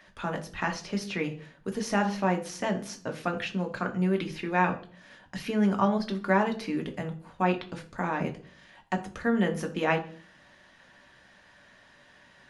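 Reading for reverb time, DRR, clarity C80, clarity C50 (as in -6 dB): 0.45 s, 4.0 dB, 18.0 dB, 14.0 dB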